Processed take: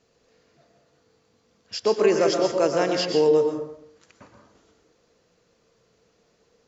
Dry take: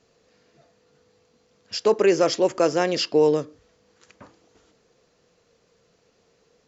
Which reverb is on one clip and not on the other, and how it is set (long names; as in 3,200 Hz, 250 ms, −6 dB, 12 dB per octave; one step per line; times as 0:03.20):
dense smooth reverb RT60 0.73 s, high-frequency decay 0.5×, pre-delay 105 ms, DRR 3.5 dB
level −2.5 dB